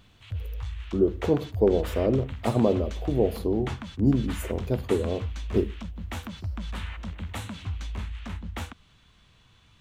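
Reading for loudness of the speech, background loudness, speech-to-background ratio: -26.5 LUFS, -36.5 LUFS, 10.0 dB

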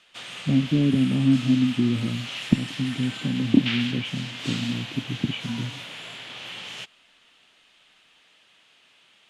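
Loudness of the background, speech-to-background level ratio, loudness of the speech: -34.0 LUFS, 9.0 dB, -25.0 LUFS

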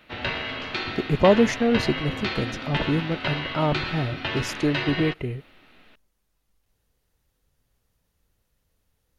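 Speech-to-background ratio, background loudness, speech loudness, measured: 4.5 dB, -29.5 LUFS, -25.0 LUFS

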